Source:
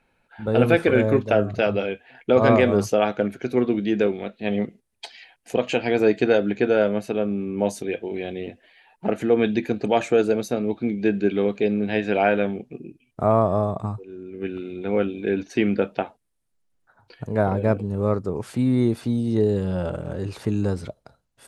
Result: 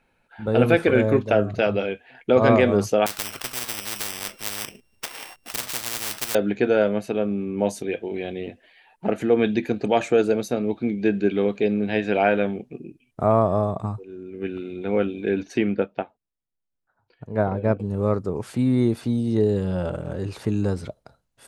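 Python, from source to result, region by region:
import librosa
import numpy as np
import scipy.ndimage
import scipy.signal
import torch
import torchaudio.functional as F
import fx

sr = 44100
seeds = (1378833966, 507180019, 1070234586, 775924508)

y = fx.chain(x, sr, fx.sample_sort(block=16),
    fx.spectral_comp(ratio=10.0), at=(3.06, 6.35))
y = fx.chain(y, sr, fx.lowpass(hz=3200.0, slope=6),
    fx.upward_expand(threshold_db=-40.0, expansion=1.5), at=(15.58, 17.8))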